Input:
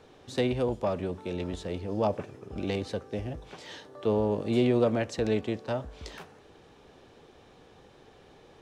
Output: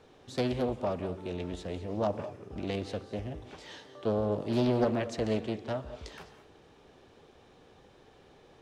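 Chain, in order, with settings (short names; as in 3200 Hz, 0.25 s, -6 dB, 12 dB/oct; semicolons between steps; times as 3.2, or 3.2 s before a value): non-linear reverb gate 0.24 s rising, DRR 12 dB; Doppler distortion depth 0.46 ms; gain -3 dB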